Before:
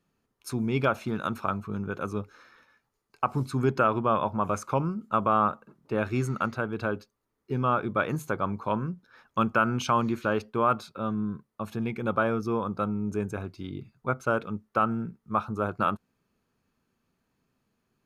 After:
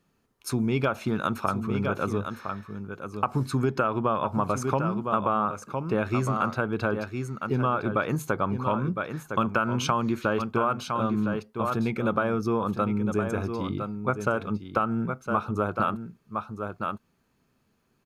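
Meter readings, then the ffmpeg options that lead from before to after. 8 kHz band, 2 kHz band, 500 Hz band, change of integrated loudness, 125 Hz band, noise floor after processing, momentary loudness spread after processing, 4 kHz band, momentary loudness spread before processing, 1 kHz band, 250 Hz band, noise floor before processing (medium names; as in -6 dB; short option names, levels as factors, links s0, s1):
+4.0 dB, +1.0 dB, +1.5 dB, +1.0 dB, +2.5 dB, -70 dBFS, 8 LU, +3.0 dB, 11 LU, +0.5 dB, +2.5 dB, -79 dBFS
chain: -af "aecho=1:1:1009:0.335,acompressor=threshold=0.0501:ratio=6,volume=1.78"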